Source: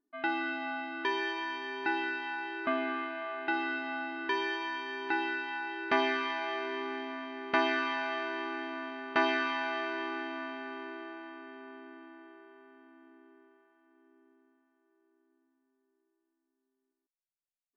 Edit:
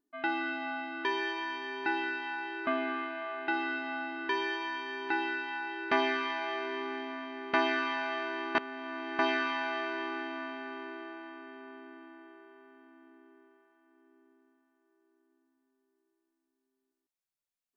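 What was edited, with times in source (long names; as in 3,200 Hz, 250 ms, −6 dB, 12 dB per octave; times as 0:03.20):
0:08.55–0:09.19: reverse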